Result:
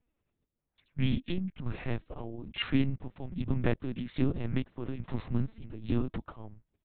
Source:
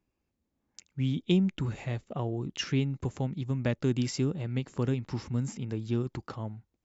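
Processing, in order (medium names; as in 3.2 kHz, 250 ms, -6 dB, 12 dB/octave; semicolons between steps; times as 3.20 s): harmony voices -5 st -5 dB, -3 st -13 dB; square tremolo 1.2 Hz, depth 65%, duty 55%; LPC vocoder at 8 kHz pitch kept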